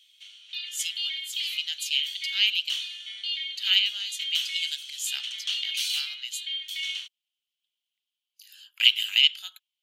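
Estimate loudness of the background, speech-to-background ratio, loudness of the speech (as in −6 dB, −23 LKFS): −31.0 LKFS, 5.5 dB, −25.5 LKFS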